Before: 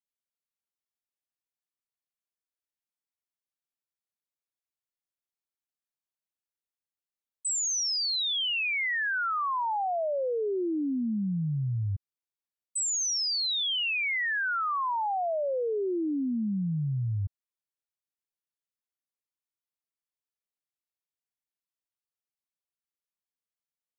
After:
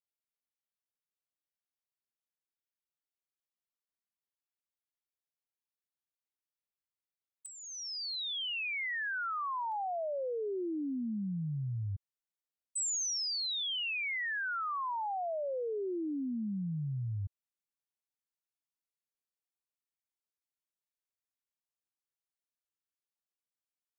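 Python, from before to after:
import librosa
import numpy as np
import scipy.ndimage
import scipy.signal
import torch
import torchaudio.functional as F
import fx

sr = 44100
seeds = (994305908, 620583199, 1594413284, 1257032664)

y = fx.peak_eq(x, sr, hz=7500.0, db=fx.steps((0.0, -6.5), (7.46, -14.5), (9.72, 2.0)), octaves=0.66)
y = y * librosa.db_to_amplitude(-6.5)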